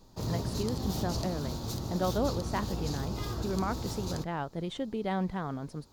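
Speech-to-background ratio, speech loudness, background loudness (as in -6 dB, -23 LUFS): 0.5 dB, -35.5 LUFS, -36.0 LUFS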